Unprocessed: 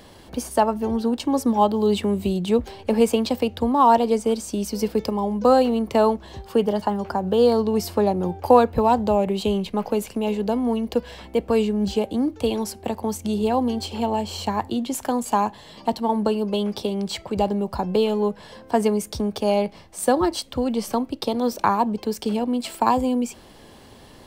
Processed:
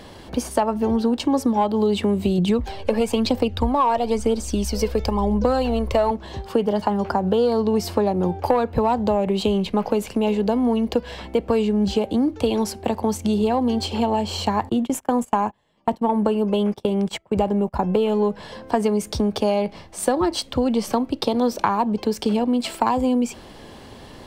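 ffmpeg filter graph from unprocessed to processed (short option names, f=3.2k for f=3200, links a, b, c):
-filter_complex "[0:a]asettb=1/sr,asplit=3[a][b][c];[a]atrim=end=2.384[d];[b]atrim=start=2.38:end=6.11,asetpts=PTS-STARTPTS,afade=t=in:d=0.004:c=qsin,afade=t=out:st=3.726:d=0.004:c=qsin,asubboost=boost=9:cutoff=64,aphaser=in_gain=1:out_gain=1:delay=2:decay=0.45:speed=1:type=triangular[e];[c]atrim=start=6.106[f];[d][e]acrossfade=d=0.004:c1=hsin:c2=qsin[g];[g][f]acrossfade=d=0.004:c1=qsin:c2=hsin,asettb=1/sr,asplit=3[h][i][j];[h]atrim=end=14.694[k];[i]atrim=start=14.69:end=18.12,asetpts=PTS-STARTPTS,afade=t=in:d=0.004:c=qsin,afade=t=out:st=3.426:d=0.004:c=qsin,agate=range=-26dB:threshold=-31dB:ratio=16:release=100:detection=peak,equalizer=f=4.4k:t=o:w=0.62:g=-10[l];[j]atrim=start=18.116[m];[k][l]acrossfade=d=0.004:c1=hsin:c2=qsin[n];[n][m]acrossfade=d=0.004:c1=qsin:c2=hsin,acontrast=36,highshelf=f=8.6k:g=-9,acompressor=threshold=-16dB:ratio=6"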